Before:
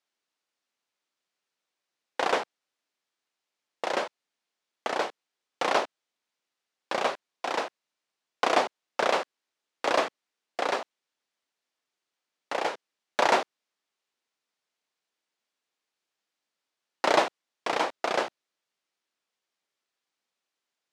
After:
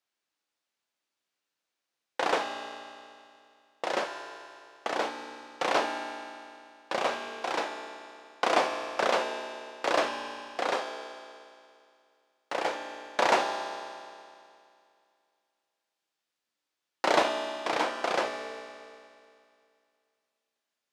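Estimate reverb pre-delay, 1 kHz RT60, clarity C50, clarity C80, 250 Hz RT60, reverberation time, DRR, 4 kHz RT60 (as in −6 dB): 4 ms, 2.4 s, 5.5 dB, 6.5 dB, 2.4 s, 2.4 s, 4.0 dB, 2.4 s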